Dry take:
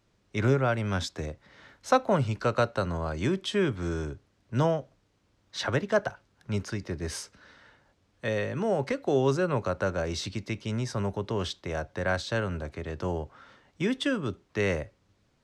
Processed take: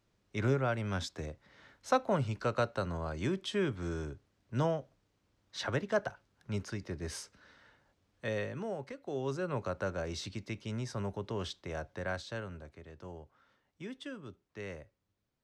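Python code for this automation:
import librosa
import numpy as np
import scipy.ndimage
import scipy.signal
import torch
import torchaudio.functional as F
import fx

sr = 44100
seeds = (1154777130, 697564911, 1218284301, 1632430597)

y = fx.gain(x, sr, db=fx.line((8.42, -6.0), (8.92, -15.5), (9.6, -7.0), (11.89, -7.0), (12.91, -16.0)))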